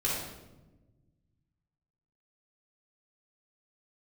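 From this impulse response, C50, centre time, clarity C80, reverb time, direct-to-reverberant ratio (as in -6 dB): -0.5 dB, 70 ms, 3.0 dB, 1.1 s, -6.5 dB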